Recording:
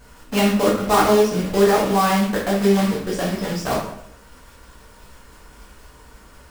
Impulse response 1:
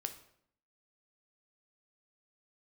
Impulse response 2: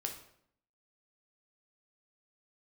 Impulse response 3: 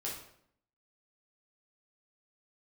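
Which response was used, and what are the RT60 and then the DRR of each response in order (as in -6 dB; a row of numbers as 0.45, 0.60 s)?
3; 0.70, 0.70, 0.70 s; 6.5, 2.5, -5.5 dB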